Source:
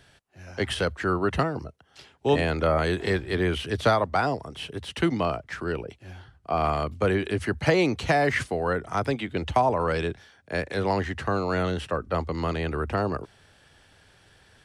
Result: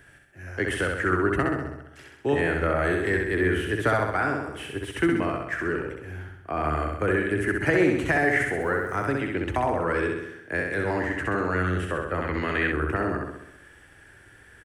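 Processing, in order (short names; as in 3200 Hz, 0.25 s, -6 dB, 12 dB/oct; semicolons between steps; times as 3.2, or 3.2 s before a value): in parallel at -1 dB: compressor, threshold -34 dBFS, peak gain reduction 17 dB; on the sum: EQ curve 110 Hz 0 dB, 210 Hz -4 dB, 310 Hz +5 dB, 480 Hz -1 dB, 750 Hz -4 dB, 1100 Hz -2 dB, 1700 Hz +7 dB, 4200 Hz -13 dB, 8000 Hz 0 dB, 12000 Hz +3 dB; feedback echo 65 ms, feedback 58%, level -3.5 dB; 8.61–9.06 requantised 10-bit, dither triangular; 12.22–12.72 band shelf 2500 Hz +8.5 dB; gain -4 dB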